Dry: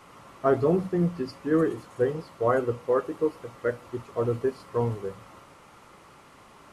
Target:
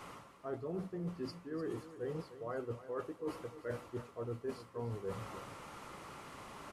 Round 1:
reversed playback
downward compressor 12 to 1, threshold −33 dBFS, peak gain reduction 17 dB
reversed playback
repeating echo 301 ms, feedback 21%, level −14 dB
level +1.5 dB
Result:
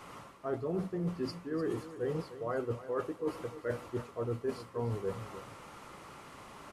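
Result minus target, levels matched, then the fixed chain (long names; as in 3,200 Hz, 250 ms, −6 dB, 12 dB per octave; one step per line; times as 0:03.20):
downward compressor: peak gain reduction −6 dB
reversed playback
downward compressor 12 to 1, threshold −39.5 dBFS, peak gain reduction 23 dB
reversed playback
repeating echo 301 ms, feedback 21%, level −14 dB
level +1.5 dB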